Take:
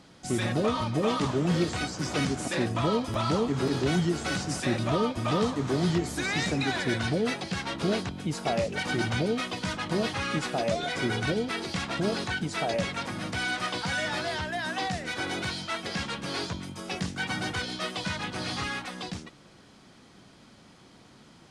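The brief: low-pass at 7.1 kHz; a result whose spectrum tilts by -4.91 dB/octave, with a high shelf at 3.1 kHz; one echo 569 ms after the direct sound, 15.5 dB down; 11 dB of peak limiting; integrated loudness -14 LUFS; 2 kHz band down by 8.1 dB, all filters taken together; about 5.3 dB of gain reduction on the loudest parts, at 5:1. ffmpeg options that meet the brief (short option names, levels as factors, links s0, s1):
-af "lowpass=7100,equalizer=f=2000:t=o:g=-9,highshelf=f=3100:g=-7,acompressor=threshold=0.0398:ratio=5,alimiter=level_in=2.11:limit=0.0631:level=0:latency=1,volume=0.473,aecho=1:1:569:0.168,volume=17.8"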